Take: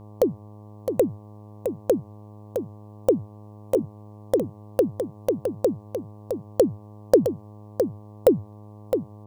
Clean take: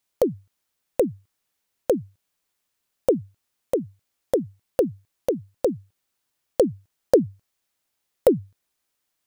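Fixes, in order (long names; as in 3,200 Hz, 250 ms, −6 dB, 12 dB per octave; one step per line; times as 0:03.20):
hum removal 104.8 Hz, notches 11
echo removal 662 ms −7 dB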